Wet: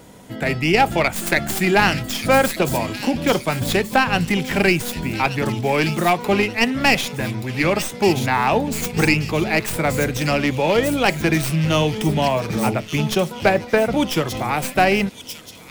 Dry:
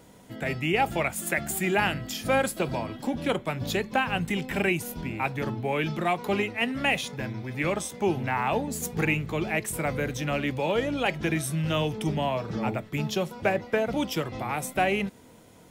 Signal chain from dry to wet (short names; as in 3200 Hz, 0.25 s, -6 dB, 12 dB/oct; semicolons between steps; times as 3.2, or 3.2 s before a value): tracing distortion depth 0.13 ms; thin delay 1.18 s, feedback 40%, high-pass 3800 Hz, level -3.5 dB; gain +8.5 dB